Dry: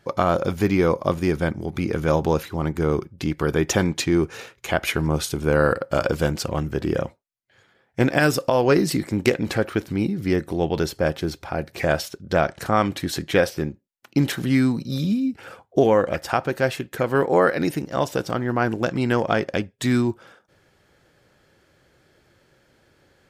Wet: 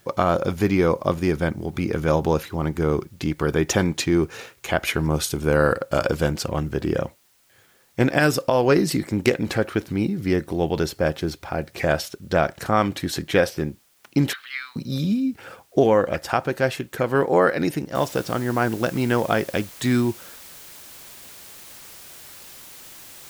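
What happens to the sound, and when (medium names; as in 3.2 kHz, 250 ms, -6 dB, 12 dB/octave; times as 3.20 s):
5.01–6.13 s: treble shelf 6.4 kHz +4.5 dB
14.33–14.76 s: Chebyshev band-pass 1.2–4.2 kHz, order 3
17.95 s: noise floor step -61 dB -43 dB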